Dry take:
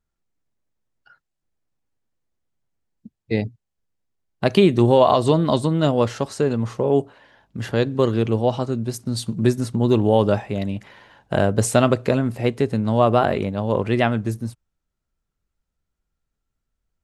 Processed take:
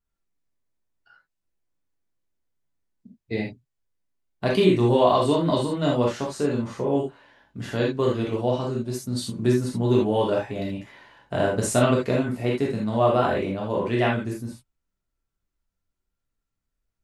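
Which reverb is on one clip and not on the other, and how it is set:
reverb whose tail is shaped and stops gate 100 ms flat, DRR −3.5 dB
level −7.5 dB

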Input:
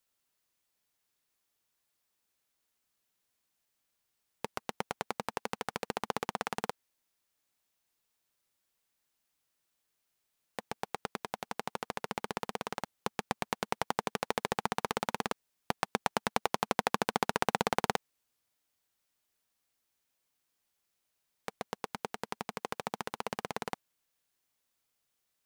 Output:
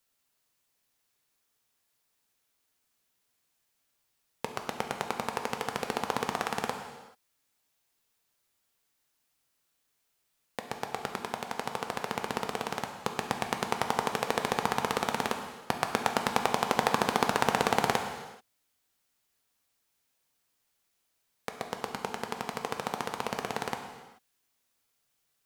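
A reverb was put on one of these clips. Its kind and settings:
reverb whose tail is shaped and stops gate 460 ms falling, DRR 4 dB
level +3 dB

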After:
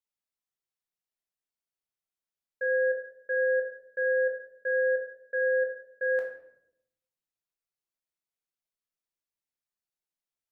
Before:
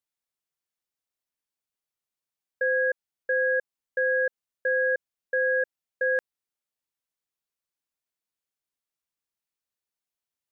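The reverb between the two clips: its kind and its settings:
rectangular room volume 180 cubic metres, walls mixed, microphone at 1 metre
level −8.5 dB

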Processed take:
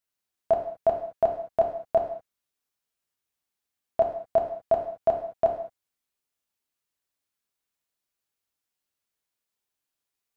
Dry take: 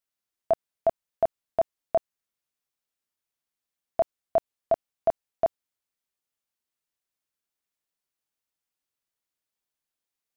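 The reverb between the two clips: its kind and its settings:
reverb whose tail is shaped and stops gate 240 ms falling, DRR 2 dB

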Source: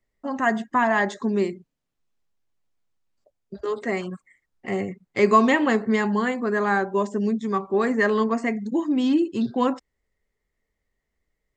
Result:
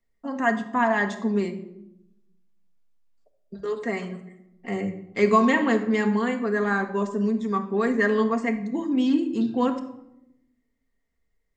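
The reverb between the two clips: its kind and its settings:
rectangular room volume 2,400 cubic metres, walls furnished, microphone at 1.7 metres
level −3.5 dB

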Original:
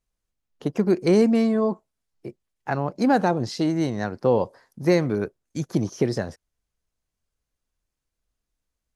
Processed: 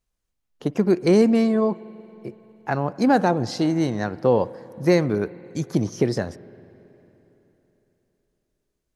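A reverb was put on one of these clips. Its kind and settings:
spring reverb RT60 3.6 s, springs 46/56 ms, chirp 65 ms, DRR 18.5 dB
level +1.5 dB

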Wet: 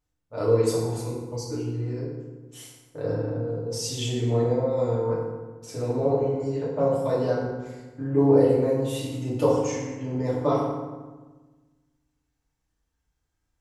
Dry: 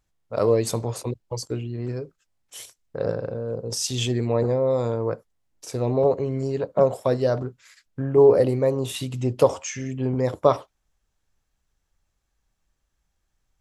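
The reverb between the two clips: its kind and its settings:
feedback delay network reverb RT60 1.3 s, low-frequency decay 1.4×, high-frequency decay 0.6×, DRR −7.5 dB
level −11 dB

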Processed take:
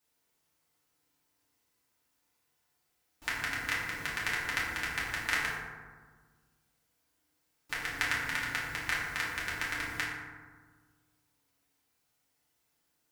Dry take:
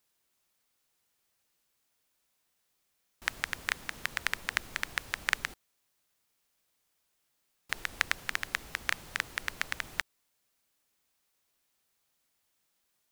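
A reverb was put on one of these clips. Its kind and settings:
feedback delay network reverb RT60 1.5 s, low-frequency decay 1.4×, high-frequency decay 0.4×, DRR −8 dB
level −6.5 dB

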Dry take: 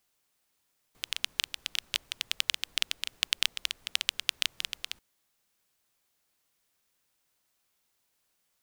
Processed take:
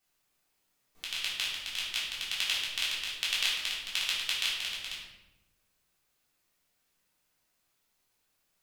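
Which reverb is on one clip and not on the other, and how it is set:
rectangular room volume 380 cubic metres, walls mixed, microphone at 3.5 metres
level −8 dB

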